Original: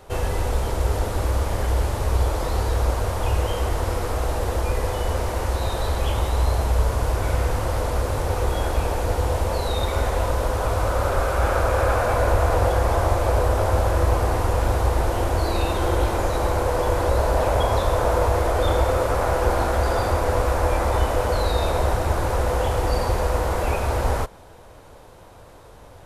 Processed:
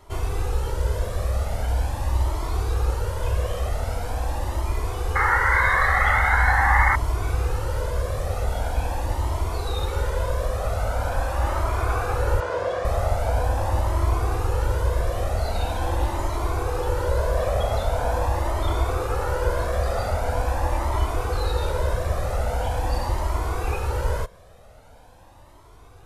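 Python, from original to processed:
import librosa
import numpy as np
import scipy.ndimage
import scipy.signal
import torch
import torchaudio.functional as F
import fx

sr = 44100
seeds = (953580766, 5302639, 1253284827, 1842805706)

y = fx.spec_paint(x, sr, seeds[0], shape='noise', start_s=5.15, length_s=1.81, low_hz=730.0, high_hz=2200.0, level_db=-16.0)
y = fx.bandpass_edges(y, sr, low_hz=210.0, high_hz=5400.0, at=(12.4, 12.85))
y = fx.comb_cascade(y, sr, direction='rising', hz=0.43)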